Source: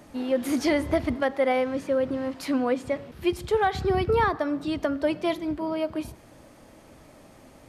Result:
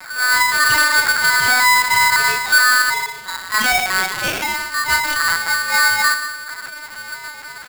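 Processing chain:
0:02.72–0:04.88: resonant band-pass 1,500 Hz, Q 0.86
soft clipping −26 dBFS, distortion −9 dB
phase shifter 0.77 Hz, delay 3.9 ms, feedback 74%
loudspeakers that aren't time-aligned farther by 12 metres −6 dB, 39 metres −8 dB
rectangular room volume 150 cubic metres, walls mixed, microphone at 4.3 metres
linear-prediction vocoder at 8 kHz pitch kept
boost into a limiter +1 dB
ring modulator with a square carrier 1,500 Hz
level −6.5 dB

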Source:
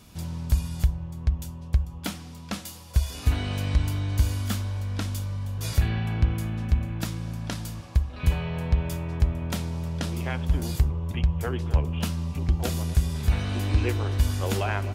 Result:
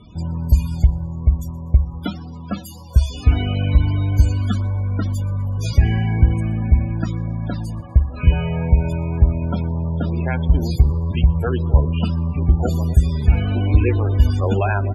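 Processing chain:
spectral peaks only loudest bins 32
on a send: delay with a high-pass on its return 123 ms, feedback 52%, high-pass 3,900 Hz, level −23 dB
on the sum: level +8.5 dB

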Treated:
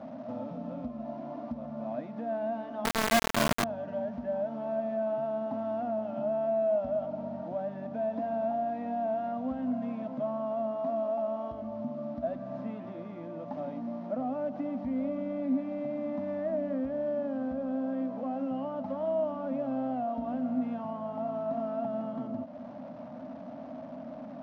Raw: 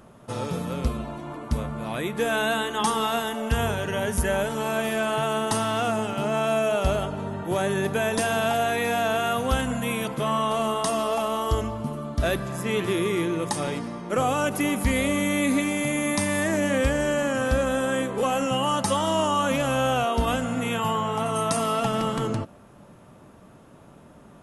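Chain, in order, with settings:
linear delta modulator 32 kbit/s, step −35.5 dBFS
downward compressor 2.5 to 1, threshold −35 dBFS, peak gain reduction 12 dB
pair of resonant band-passes 400 Hz, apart 1.3 octaves
0:02.85–0:03.64: log-companded quantiser 2 bits
level +8 dB

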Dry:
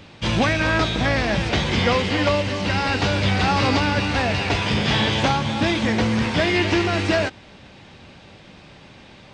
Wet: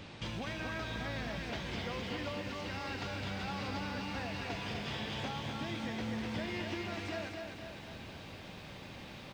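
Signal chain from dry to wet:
downward compressor 4 to 1, threshold −37 dBFS, peak gain reduction 18.5 dB
slap from a distant wall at 35 metres, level −11 dB
feedback echo at a low word length 250 ms, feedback 55%, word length 10 bits, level −4.5 dB
level −4.5 dB

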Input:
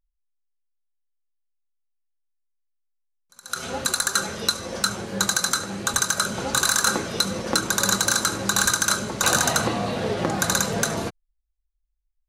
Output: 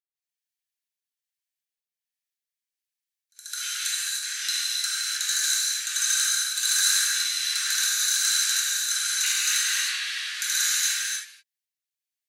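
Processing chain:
elliptic high-pass filter 1,700 Hz, stop band 60 dB
brickwall limiter −16 dBFS, peak gain reduction 8.5 dB
gate pattern ".xxxxx.xxxx..xxx" 103 BPM −12 dB
reverb whose tail is shaped and stops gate 340 ms flat, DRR −7 dB

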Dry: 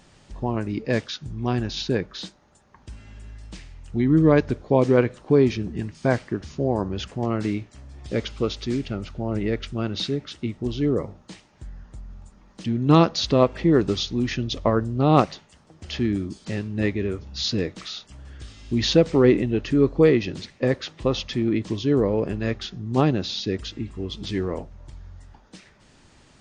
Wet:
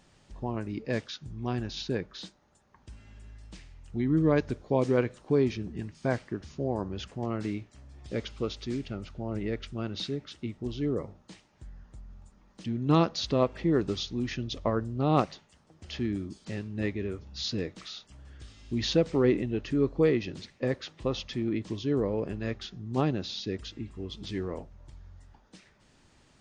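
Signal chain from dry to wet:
0:04.36–0:05.44: high-shelf EQ 5,500 Hz +6.5 dB
level −7.5 dB

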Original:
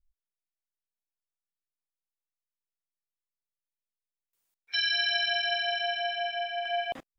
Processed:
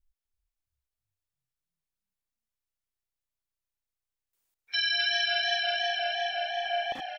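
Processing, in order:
echo with shifted repeats 330 ms, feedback 62%, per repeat +31 Hz, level −11 dB
feedback echo with a swinging delay time 259 ms, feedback 41%, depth 197 cents, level −13.5 dB

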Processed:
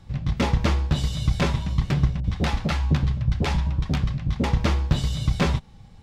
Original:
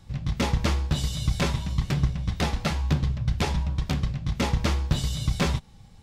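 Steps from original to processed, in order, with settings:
high-shelf EQ 5,500 Hz −10 dB
0:02.20–0:04.45: multiband delay without the direct sound lows, highs 40 ms, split 610 Hz
level +3 dB

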